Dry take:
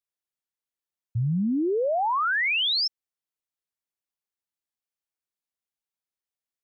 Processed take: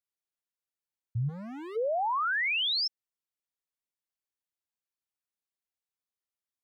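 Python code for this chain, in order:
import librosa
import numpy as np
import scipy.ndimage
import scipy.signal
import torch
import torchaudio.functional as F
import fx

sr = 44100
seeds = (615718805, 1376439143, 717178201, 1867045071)

y = fx.clip_hard(x, sr, threshold_db=-35.5, at=(1.28, 1.75), fade=0.02)
y = y * librosa.db_to_amplitude(-4.5)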